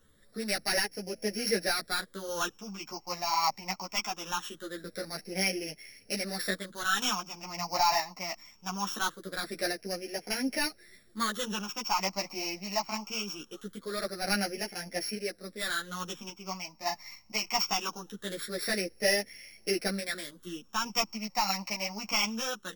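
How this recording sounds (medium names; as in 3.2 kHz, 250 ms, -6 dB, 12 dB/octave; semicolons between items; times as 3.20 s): a buzz of ramps at a fixed pitch in blocks of 8 samples; phasing stages 8, 0.22 Hz, lowest notch 450–1100 Hz; random-step tremolo; a shimmering, thickened sound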